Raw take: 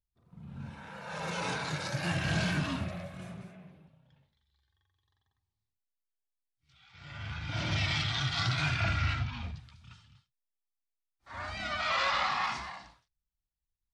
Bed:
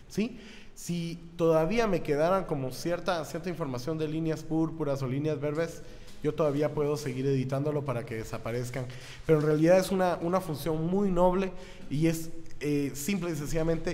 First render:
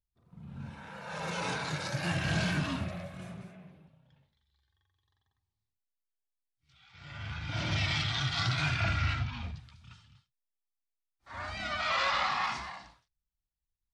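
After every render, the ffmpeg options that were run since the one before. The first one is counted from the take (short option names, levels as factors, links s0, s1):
-af anull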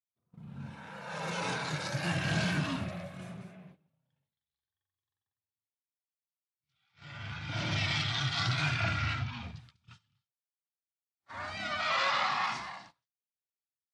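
-af "highpass=f=96:w=0.5412,highpass=f=96:w=1.3066,agate=range=0.158:threshold=0.00224:ratio=16:detection=peak"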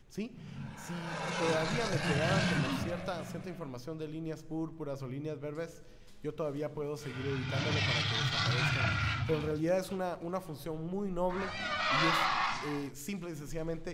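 -filter_complex "[1:a]volume=0.355[s0];[0:a][s0]amix=inputs=2:normalize=0"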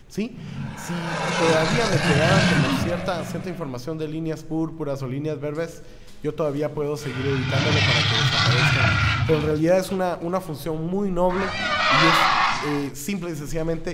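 -af "volume=3.98"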